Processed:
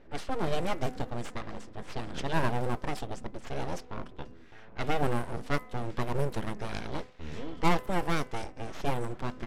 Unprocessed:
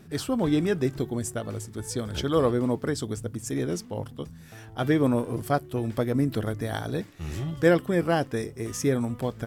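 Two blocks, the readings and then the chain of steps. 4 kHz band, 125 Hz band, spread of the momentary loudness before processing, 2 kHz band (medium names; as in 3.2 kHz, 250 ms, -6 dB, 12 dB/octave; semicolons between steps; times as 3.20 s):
-4.0 dB, -6.5 dB, 12 LU, -3.0 dB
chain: full-wave rectifier; level-controlled noise filter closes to 2.5 kHz, open at -20 dBFS; de-hum 253.2 Hz, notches 11; trim -2.5 dB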